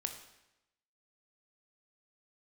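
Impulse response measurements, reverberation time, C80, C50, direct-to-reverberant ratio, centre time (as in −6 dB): 0.90 s, 10.5 dB, 8.5 dB, 5.5 dB, 18 ms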